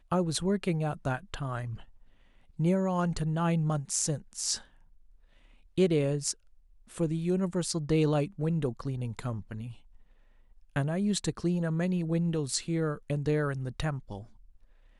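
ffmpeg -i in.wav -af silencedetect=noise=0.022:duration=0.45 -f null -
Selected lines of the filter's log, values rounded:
silence_start: 1.74
silence_end: 2.59 | silence_duration: 0.85
silence_start: 4.56
silence_end: 5.78 | silence_duration: 1.21
silence_start: 6.32
silence_end: 6.98 | silence_duration: 0.66
silence_start: 9.67
silence_end: 10.76 | silence_duration: 1.09
silence_start: 14.17
silence_end: 14.99 | silence_duration: 0.82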